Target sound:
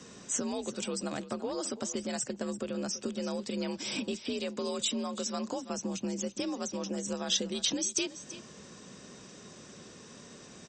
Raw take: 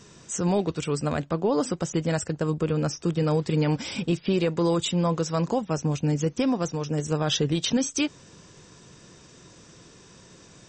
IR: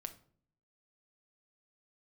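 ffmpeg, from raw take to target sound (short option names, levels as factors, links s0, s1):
-filter_complex "[0:a]acrossover=split=3300[s0][s1];[s0]acompressor=threshold=0.0224:ratio=6[s2];[s2][s1]amix=inputs=2:normalize=0,aecho=1:1:334:0.188,afreqshift=52" -ar 48000 -c:a libopus -b:a 64k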